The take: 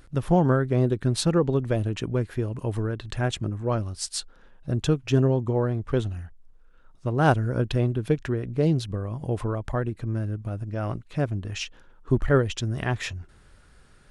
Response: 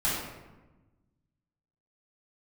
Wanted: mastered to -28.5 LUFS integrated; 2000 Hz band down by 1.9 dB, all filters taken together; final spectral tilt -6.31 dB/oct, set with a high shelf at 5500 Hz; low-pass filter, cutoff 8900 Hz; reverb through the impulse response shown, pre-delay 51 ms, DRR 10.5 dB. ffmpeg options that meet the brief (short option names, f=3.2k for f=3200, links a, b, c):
-filter_complex "[0:a]lowpass=8.9k,equalizer=f=2k:t=o:g=-3.5,highshelf=f=5.5k:g=6.5,asplit=2[a][b];[1:a]atrim=start_sample=2205,adelay=51[c];[b][c]afir=irnorm=-1:irlink=0,volume=-21dB[d];[a][d]amix=inputs=2:normalize=0,volume=-3dB"